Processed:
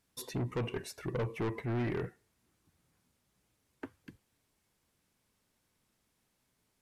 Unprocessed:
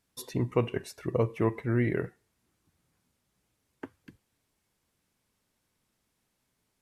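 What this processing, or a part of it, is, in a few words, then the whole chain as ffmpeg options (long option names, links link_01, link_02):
saturation between pre-emphasis and de-emphasis: -af "highshelf=frequency=9800:gain=11,asoftclip=type=tanh:threshold=-30dB,highshelf=frequency=9800:gain=-11"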